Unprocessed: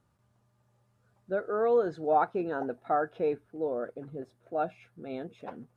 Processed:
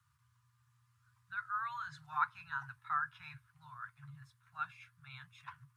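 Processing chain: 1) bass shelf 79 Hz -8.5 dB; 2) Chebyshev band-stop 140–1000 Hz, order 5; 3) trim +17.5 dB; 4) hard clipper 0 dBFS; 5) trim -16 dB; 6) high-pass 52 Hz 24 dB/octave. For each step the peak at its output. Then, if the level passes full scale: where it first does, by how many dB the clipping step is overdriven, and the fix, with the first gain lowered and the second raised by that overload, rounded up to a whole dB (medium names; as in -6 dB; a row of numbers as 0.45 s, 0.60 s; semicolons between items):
-14.5 dBFS, -21.5 dBFS, -4.0 dBFS, -4.0 dBFS, -20.0 dBFS, -20.0 dBFS; nothing clips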